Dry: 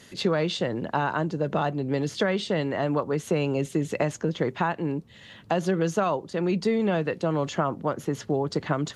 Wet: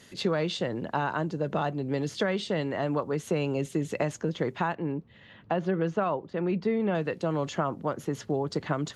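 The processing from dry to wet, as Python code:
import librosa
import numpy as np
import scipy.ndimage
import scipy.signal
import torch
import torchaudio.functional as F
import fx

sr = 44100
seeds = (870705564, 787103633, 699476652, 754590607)

y = fx.lowpass(x, sr, hz=2600.0, slope=12, at=(4.75, 6.95))
y = F.gain(torch.from_numpy(y), -3.0).numpy()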